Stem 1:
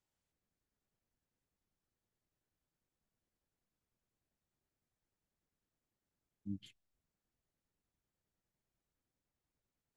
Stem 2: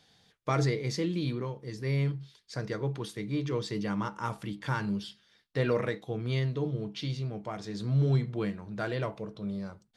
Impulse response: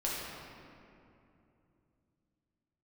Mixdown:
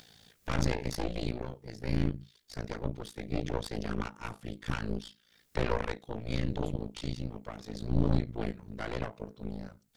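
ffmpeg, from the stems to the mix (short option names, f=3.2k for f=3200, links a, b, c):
-filter_complex "[0:a]highshelf=f=4.4k:g=11,volume=2.5dB[a];[1:a]tremolo=f=56:d=0.919,volume=-1dB,asplit=2[b][c];[c]apad=whole_len=439343[d];[a][d]sidechaincompress=threshold=-35dB:ratio=8:attack=6.7:release=195[e];[e][b]amix=inputs=2:normalize=0,equalizer=f=880:t=o:w=0.77:g=-3.5,acompressor=mode=upward:threshold=-47dB:ratio=2.5,aeval=exprs='0.15*(cos(1*acos(clip(val(0)/0.15,-1,1)))-cos(1*PI/2))+0.0473*(cos(4*acos(clip(val(0)/0.15,-1,1)))-cos(4*PI/2))+0.0188*(cos(8*acos(clip(val(0)/0.15,-1,1)))-cos(8*PI/2))':c=same"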